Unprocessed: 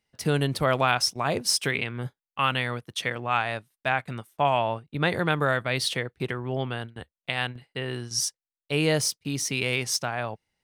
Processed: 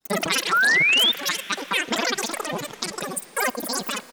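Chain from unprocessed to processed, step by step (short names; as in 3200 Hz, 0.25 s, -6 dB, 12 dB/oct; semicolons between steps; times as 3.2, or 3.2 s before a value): in parallel at -2.5 dB: compressor, threshold -31 dBFS, peak gain reduction 13 dB; on the sum: grains, pitch spread up and down by 12 st; wide varispeed 2.58×; painted sound rise, 0.52–1.12, 1300–3700 Hz -18 dBFS; speakerphone echo 0.39 s, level -17 dB; on a send at -18 dB: reverb RT60 5.5 s, pre-delay 39 ms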